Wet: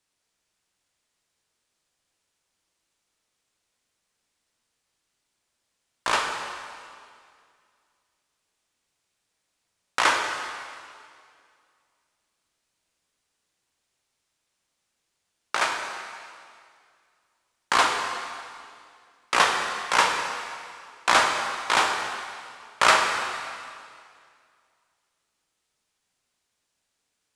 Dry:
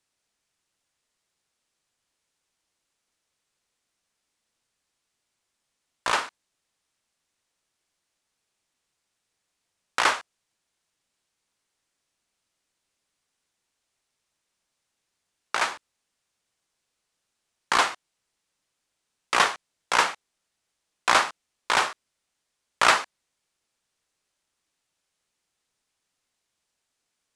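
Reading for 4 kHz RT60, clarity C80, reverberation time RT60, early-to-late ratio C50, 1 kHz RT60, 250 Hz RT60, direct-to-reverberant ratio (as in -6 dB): 2.1 s, 5.0 dB, 2.2 s, 4.0 dB, 2.2 s, 2.2 s, 2.0 dB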